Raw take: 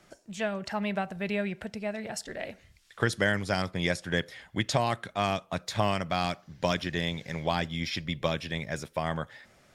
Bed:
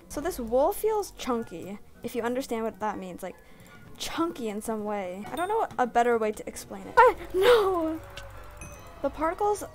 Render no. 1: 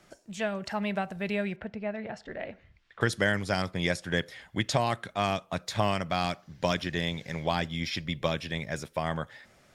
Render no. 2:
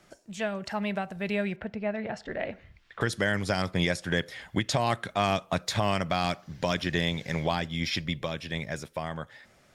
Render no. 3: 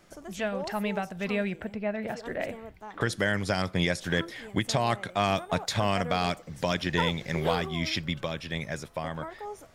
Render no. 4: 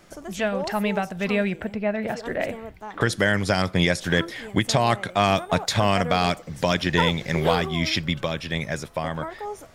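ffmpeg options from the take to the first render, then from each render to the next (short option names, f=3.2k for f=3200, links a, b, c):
-filter_complex "[0:a]asettb=1/sr,asplit=3[a][b][c];[a]atrim=end=1.564[d];[b]atrim=start=1.56:end=3.01,asetpts=PTS-STARTPTS,afade=t=in:d=0.004:c=qsin,afade=t=out:st=1.446:d=0.004:c=qsin,lowpass=2.4k[e];[c]atrim=start=3.006[f];[d][e]acrossfade=d=0.004:c1=hsin:c2=qsin[g];[g][f]acrossfade=d=0.004:c1=qsin:c2=hsin"
-af "alimiter=limit=-19.5dB:level=0:latency=1:release=344,dynaudnorm=f=250:g=17:m=6.5dB"
-filter_complex "[1:a]volume=-13.5dB[a];[0:a][a]amix=inputs=2:normalize=0"
-af "volume=6dB"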